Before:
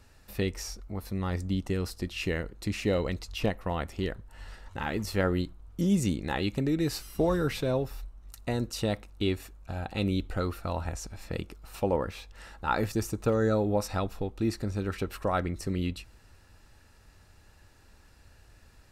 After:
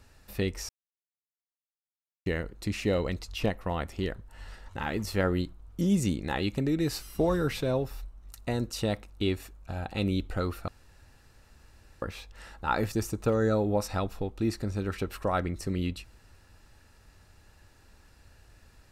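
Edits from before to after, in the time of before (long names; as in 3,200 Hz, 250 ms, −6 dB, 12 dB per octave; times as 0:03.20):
0:00.69–0:02.26: silence
0:10.68–0:12.02: fill with room tone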